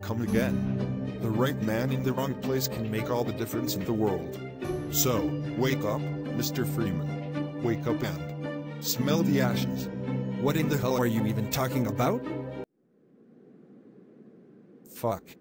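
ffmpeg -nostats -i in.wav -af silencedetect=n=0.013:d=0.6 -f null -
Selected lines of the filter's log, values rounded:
silence_start: 12.64
silence_end: 14.86 | silence_duration: 2.22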